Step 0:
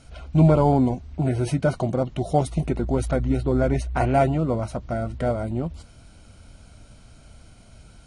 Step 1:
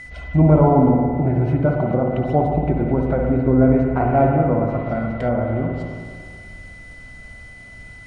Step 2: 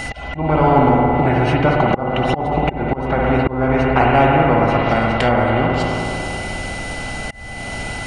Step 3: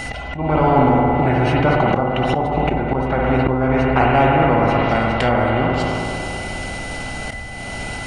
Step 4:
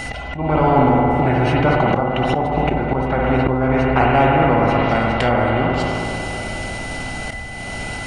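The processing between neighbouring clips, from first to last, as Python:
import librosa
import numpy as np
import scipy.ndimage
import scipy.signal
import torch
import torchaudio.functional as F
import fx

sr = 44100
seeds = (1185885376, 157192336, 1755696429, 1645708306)

y1 = x + 10.0 ** (-37.0 / 20.0) * np.sin(2.0 * np.pi * 2000.0 * np.arange(len(x)) / sr)
y1 = fx.rev_spring(y1, sr, rt60_s=1.9, pass_ms=(54, 58), chirp_ms=45, drr_db=0.5)
y1 = fx.env_lowpass_down(y1, sr, base_hz=1400.0, full_db=-17.0)
y1 = F.gain(torch.from_numpy(y1), 2.0).numpy()
y2 = fx.auto_swell(y1, sr, attack_ms=420.0)
y2 = fx.small_body(y2, sr, hz=(810.0, 2800.0), ring_ms=45, db=14)
y2 = fx.spectral_comp(y2, sr, ratio=2.0)
y3 = fx.comb_fb(y2, sr, f0_hz=64.0, decay_s=0.2, harmonics='all', damping=0.0, mix_pct=30)
y3 = fx.sustainer(y3, sr, db_per_s=26.0)
y4 = y3 + 10.0 ** (-19.5 / 20.0) * np.pad(y3, (int(1106 * sr / 1000.0), 0))[:len(y3)]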